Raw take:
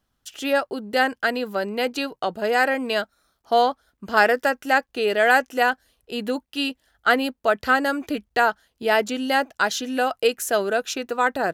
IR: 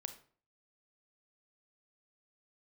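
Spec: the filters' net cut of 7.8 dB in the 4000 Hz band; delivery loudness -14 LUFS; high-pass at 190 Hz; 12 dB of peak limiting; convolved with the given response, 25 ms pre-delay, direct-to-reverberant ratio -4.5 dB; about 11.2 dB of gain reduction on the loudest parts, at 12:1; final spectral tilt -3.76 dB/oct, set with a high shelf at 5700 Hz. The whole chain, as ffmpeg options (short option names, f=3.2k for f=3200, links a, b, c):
-filter_complex "[0:a]highpass=190,equalizer=f=4k:t=o:g=-9,highshelf=f=5.7k:g=-7.5,acompressor=threshold=-25dB:ratio=12,alimiter=level_in=2dB:limit=-24dB:level=0:latency=1,volume=-2dB,asplit=2[a][b];[1:a]atrim=start_sample=2205,adelay=25[c];[b][c]afir=irnorm=-1:irlink=0,volume=7.5dB[d];[a][d]amix=inputs=2:normalize=0,volume=16.5dB"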